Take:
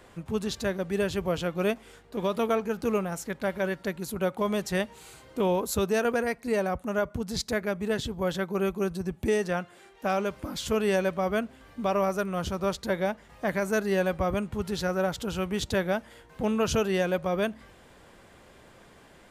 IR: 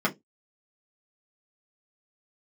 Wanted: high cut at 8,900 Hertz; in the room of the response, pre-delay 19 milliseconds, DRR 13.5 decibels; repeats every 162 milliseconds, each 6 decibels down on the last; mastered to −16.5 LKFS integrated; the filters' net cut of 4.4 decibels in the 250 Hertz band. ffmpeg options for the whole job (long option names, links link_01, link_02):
-filter_complex "[0:a]lowpass=8900,equalizer=frequency=250:width_type=o:gain=-6.5,aecho=1:1:162|324|486|648|810|972:0.501|0.251|0.125|0.0626|0.0313|0.0157,asplit=2[link_01][link_02];[1:a]atrim=start_sample=2205,adelay=19[link_03];[link_02][link_03]afir=irnorm=-1:irlink=0,volume=-25.5dB[link_04];[link_01][link_04]amix=inputs=2:normalize=0,volume=13dB"